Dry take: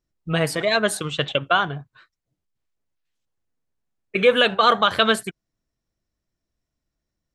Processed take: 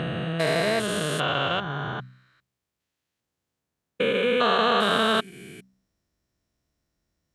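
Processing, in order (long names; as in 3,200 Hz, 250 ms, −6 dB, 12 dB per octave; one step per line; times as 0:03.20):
spectrum averaged block by block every 400 ms
high-pass filter 44 Hz
hum removal 63.74 Hz, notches 4
in parallel at +1 dB: downward compressor, threshold −33 dBFS, peak gain reduction 12.5 dB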